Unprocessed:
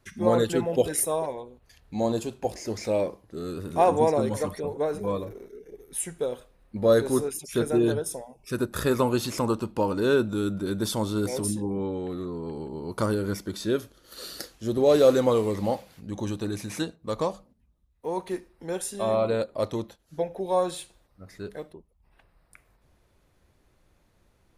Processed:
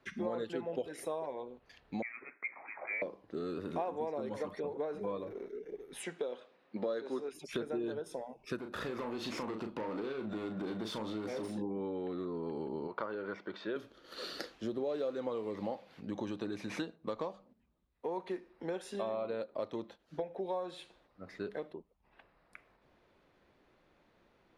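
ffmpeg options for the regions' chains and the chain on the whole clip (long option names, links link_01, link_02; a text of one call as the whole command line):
ffmpeg -i in.wav -filter_complex "[0:a]asettb=1/sr,asplit=3[link_01][link_02][link_03];[link_01]atrim=end=2.024[link_04];[link_02]atrim=start=2.02:end=3.02,asetpts=PTS-STARTPTS,afade=type=in:duration=0.004:curve=qsin,afade=type=out:start_time=0.996:duration=0.004:curve=qsin,highpass=frequency=770:width=0.5412,highpass=frequency=770:width=1.3066,lowpass=frequency=2500:width_type=q:width=0.5098,lowpass=frequency=2500:width_type=q:width=0.6013,lowpass=frequency=2500:width_type=q:width=0.9,lowpass=frequency=2500:width_type=q:width=2.563,afreqshift=-2900[link_05];[link_03]atrim=start=3.016[link_06];[link_04][link_05]acrossfade=duration=0.004:curve1=hsin:curve2=qsin[link_07];[link_07][link_06]acrossfade=duration=0.004:curve1=qsin:curve2=hsin,asettb=1/sr,asplit=3[link_08][link_09][link_10];[link_08]atrim=end=6.034[link_11];[link_09]atrim=start=6.03:end=7.32,asetpts=PTS-STARTPTS,afade=type=in:duration=0.004:curve=qsin,afade=type=out:start_time=1.286:duration=0.004:curve=qsin,highpass=220,lowpass=5400,highshelf=frequency=3900:gain=8.5[link_12];[link_10]atrim=start=7.316[link_13];[link_11][link_12]acrossfade=duration=0.004:curve1=hsin:curve2=qsin[link_14];[link_14][link_13]acrossfade=duration=0.004:curve1=qsin:curve2=hsin,asettb=1/sr,asplit=3[link_15][link_16][link_17];[link_15]atrim=end=8.604[link_18];[link_16]atrim=start=8.6:end=11.58,asetpts=PTS-STARTPTS,afade=type=in:duration=0.004:curve=qsin,afade=type=out:start_time=2.976:duration=0.004:curve=qsin,acompressor=threshold=-29dB:ratio=6:attack=3.2:release=140:knee=1:detection=peak,asoftclip=type=hard:threshold=-32dB,asplit=2[link_19][link_20];[link_20]adelay=37,volume=-7dB[link_21];[link_19][link_21]amix=inputs=2:normalize=0,atrim=end_sample=131418[link_22];[link_17]atrim=start=11.576[link_23];[link_18][link_22]acrossfade=duration=0.004:curve1=hsin:curve2=qsin[link_24];[link_24][link_23]acrossfade=duration=0.004:curve1=qsin:curve2=hsin,asettb=1/sr,asplit=3[link_25][link_26][link_27];[link_25]atrim=end=12.874[link_28];[link_26]atrim=start=12.87:end=13.76,asetpts=PTS-STARTPTS,afade=type=in:duration=0.004:curve=qsin,afade=type=out:start_time=0.886:duration=0.004:curve=qsin,highpass=200,lowpass=2400,equalizer=frequency=260:width_type=o:width=1.4:gain=-10.5[link_29];[link_27]atrim=start=13.756[link_30];[link_28][link_29]acrossfade=duration=0.004:curve1=hsin:curve2=qsin[link_31];[link_31][link_30]acrossfade=duration=0.004:curve1=qsin:curve2=hsin,acrossover=split=180 4400:gain=0.178 1 0.0891[link_32][link_33][link_34];[link_32][link_33][link_34]amix=inputs=3:normalize=0,acompressor=threshold=-36dB:ratio=6,volume=1dB" out.wav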